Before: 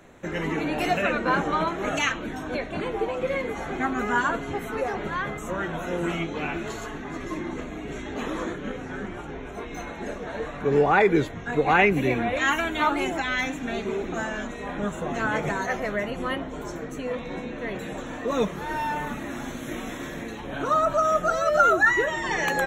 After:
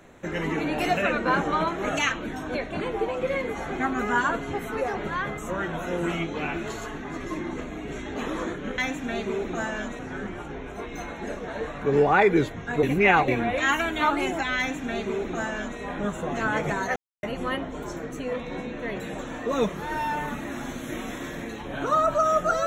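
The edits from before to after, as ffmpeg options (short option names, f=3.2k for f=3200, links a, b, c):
-filter_complex "[0:a]asplit=7[a][b][c][d][e][f][g];[a]atrim=end=8.782[h];[b]atrim=start=13.368:end=14.582[i];[c]atrim=start=8.778:end=11.622[j];[d]atrim=start=11.618:end=12.072,asetpts=PTS-STARTPTS,areverse[k];[e]atrim=start=12.068:end=15.75,asetpts=PTS-STARTPTS,afade=t=out:st=3.678:d=0.004:c=hsin[l];[f]atrim=start=15.75:end=16.02,asetpts=PTS-STARTPTS,volume=0[m];[g]atrim=start=16.02,asetpts=PTS-STARTPTS,afade=t=in:d=0.004:c=hsin[n];[h][i]acrossfade=d=0.004:c1=hsin:c2=hsin[o];[o][j]acrossfade=d=0.004:c1=hsin:c2=hsin[p];[p][k]acrossfade=d=0.004:c1=hsin:c2=hsin[q];[l][m][n]concat=n=3:v=0:a=1[r];[q][r]acrossfade=d=0.004:c1=hsin:c2=hsin"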